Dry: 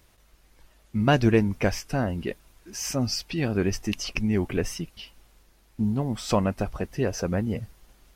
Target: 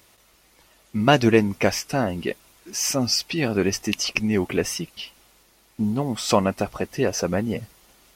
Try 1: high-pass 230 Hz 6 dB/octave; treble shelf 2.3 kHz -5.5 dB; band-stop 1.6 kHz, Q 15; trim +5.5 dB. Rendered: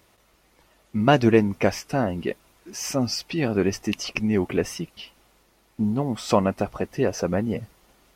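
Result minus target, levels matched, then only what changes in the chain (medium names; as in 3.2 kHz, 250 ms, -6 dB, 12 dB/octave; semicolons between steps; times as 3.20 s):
4 kHz band -5.0 dB
change: treble shelf 2.3 kHz +2.5 dB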